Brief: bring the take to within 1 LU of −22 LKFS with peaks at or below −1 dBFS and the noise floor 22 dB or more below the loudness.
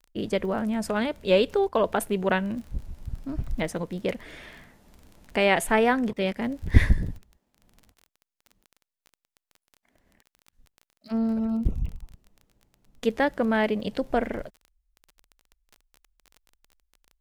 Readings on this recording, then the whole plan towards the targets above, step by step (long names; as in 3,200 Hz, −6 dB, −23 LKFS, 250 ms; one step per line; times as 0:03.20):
crackle rate 21 per second; integrated loudness −26.5 LKFS; sample peak −2.0 dBFS; target loudness −22.0 LKFS
→ click removal
level +4.5 dB
brickwall limiter −1 dBFS